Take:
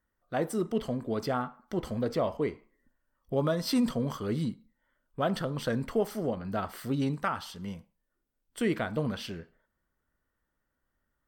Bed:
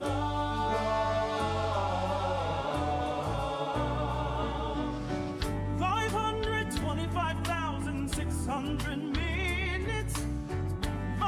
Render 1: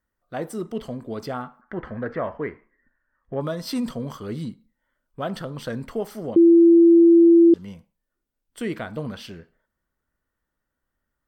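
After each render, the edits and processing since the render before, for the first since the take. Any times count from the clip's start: 1.61–3.41 synth low-pass 1700 Hz, resonance Q 5.2; 6.36–7.54 bleep 337 Hz -9 dBFS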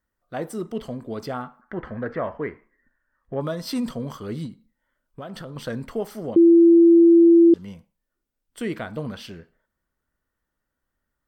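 4.46–5.56 compressor, threshold -32 dBFS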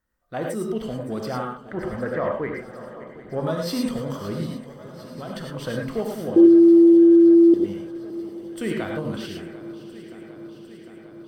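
swung echo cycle 0.753 s, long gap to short 3:1, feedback 72%, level -16.5 dB; non-linear reverb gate 0.13 s rising, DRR 0.5 dB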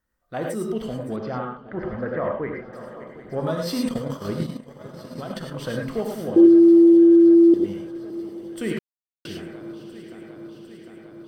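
1.16–2.73 air absorption 250 m; 3.87–5.55 transient shaper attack +6 dB, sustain -8 dB; 8.79–9.25 mute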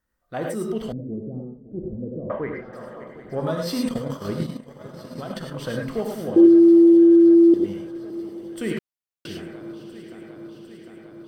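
0.92–2.3 inverse Chebyshev low-pass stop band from 2400 Hz, stop band 80 dB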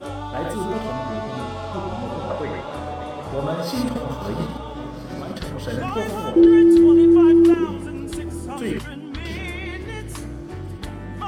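add bed 0 dB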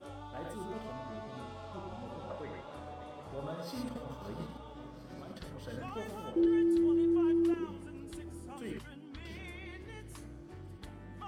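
gain -16 dB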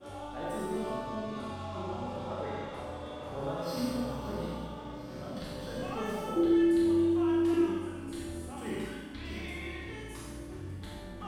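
spectral trails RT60 0.41 s; Schroeder reverb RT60 1.2 s, combs from 29 ms, DRR -3 dB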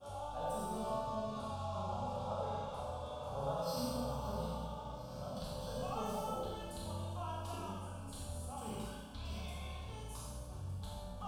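fixed phaser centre 800 Hz, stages 4

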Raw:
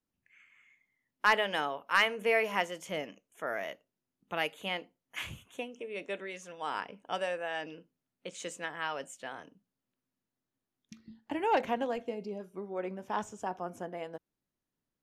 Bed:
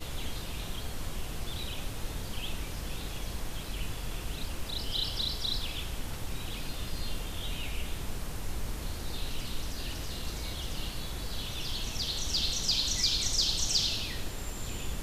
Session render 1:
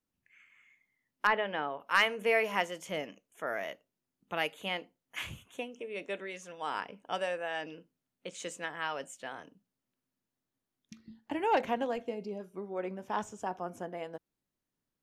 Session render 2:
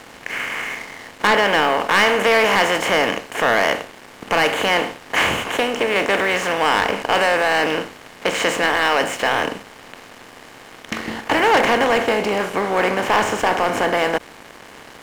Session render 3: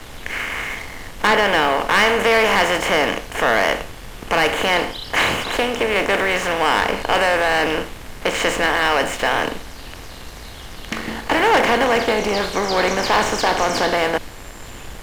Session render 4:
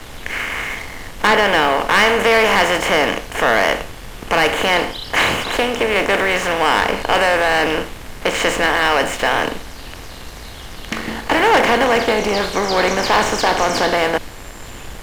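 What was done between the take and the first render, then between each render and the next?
1.27–1.8 air absorption 410 m
per-bin compression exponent 0.4; sample leveller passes 3
add bed -0.5 dB
gain +2 dB

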